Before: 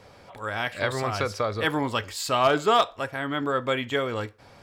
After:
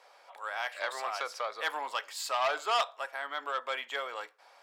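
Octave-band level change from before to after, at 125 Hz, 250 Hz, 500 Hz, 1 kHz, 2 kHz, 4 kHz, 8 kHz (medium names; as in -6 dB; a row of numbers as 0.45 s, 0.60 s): under -40 dB, -27.5 dB, -11.5 dB, -6.5 dB, -5.5 dB, -6.0 dB, -5.5 dB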